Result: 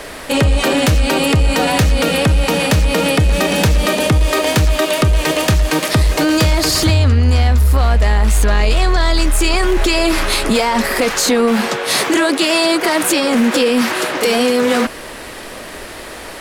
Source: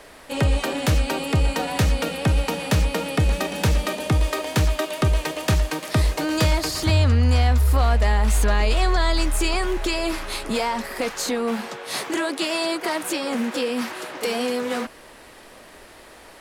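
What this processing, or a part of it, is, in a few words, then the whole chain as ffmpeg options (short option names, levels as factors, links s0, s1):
mastering chain: -af "equalizer=f=860:t=o:w=0.77:g=-2.5,acompressor=threshold=0.112:ratio=3,asoftclip=type=tanh:threshold=0.188,asoftclip=type=hard:threshold=0.141,alimiter=level_in=11.2:limit=0.891:release=50:level=0:latency=1,volume=0.531"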